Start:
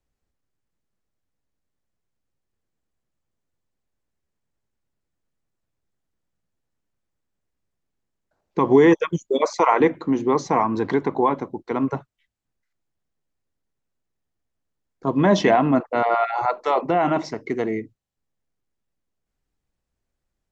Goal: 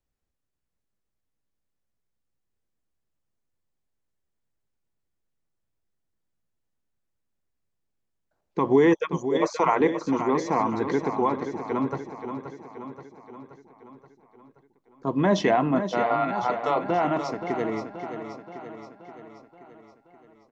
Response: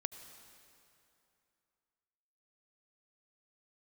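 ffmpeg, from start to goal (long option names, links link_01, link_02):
-af "aecho=1:1:527|1054|1581|2108|2635|3162|3689:0.355|0.202|0.115|0.0657|0.0375|0.0213|0.0122,volume=-4.5dB"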